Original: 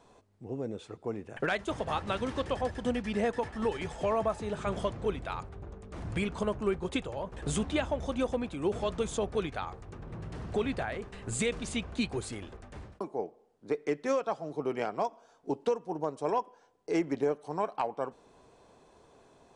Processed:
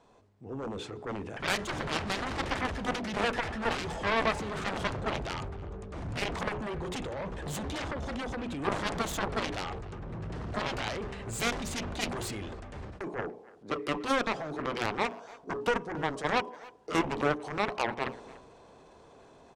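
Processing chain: LPF 9200 Hz; high shelf 5400 Hz -4.5 dB; notches 60/120/180/240/300/360/420 Hz; 6.48–8.64 compressor 10:1, threshold -30 dBFS, peak gain reduction 6.5 dB; transient shaper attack -2 dB, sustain +7 dB; AGC gain up to 6 dB; added harmonics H 3 -11 dB, 7 -17 dB, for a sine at -12.5 dBFS; speakerphone echo 0.29 s, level -20 dB

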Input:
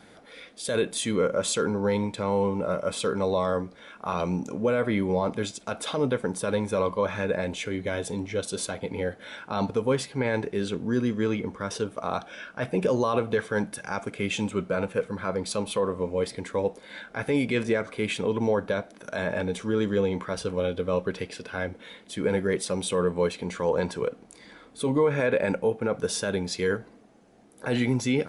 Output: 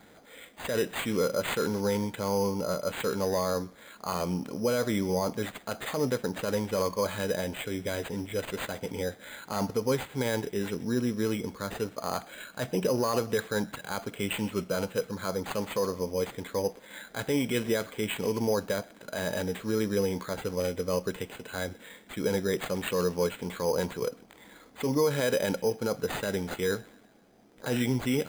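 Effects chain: on a send: thin delay 0.128 s, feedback 53%, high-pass 1900 Hz, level -18 dB; on the sum: careless resampling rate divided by 8×, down none, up hold; gain -3 dB

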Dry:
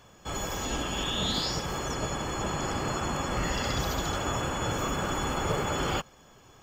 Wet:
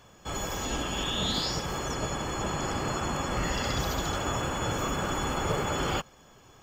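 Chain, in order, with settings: 3.74–4.74 crackle 72/s -38 dBFS

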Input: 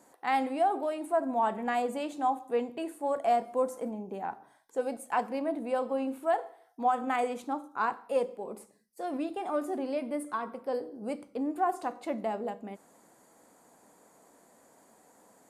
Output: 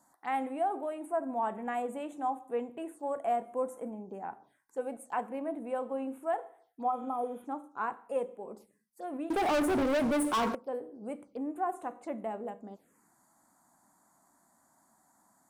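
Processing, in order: 6.9–7.42 spectral repair 1400–9200 Hz before; envelope phaser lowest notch 400 Hz, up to 4800 Hz, full sweep at -33.5 dBFS; 9.3–10.55 sample leveller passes 5; gain -4 dB

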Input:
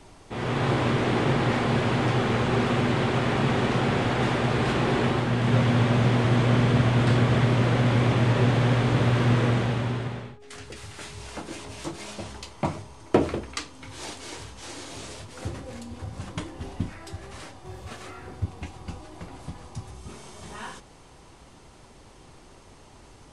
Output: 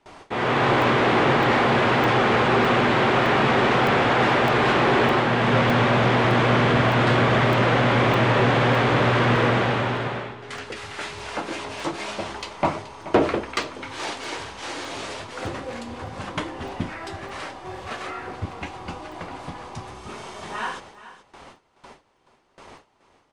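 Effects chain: gate with hold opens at -39 dBFS; high shelf 4100 Hz -10 dB; overdrive pedal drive 18 dB, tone 4900 Hz, clips at -7.5 dBFS; on a send: echo 0.427 s -15.5 dB; on the sum: crackling interface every 0.61 s, samples 64, zero, from 0.82

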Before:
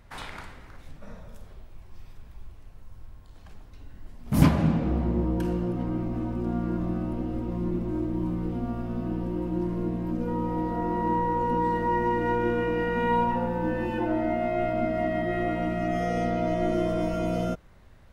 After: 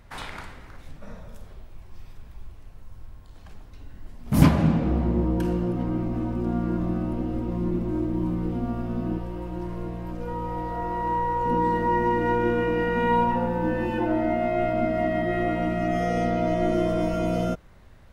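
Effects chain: 9.18–11.46 bell 250 Hz -14.5 dB 1 oct; gain +2.5 dB

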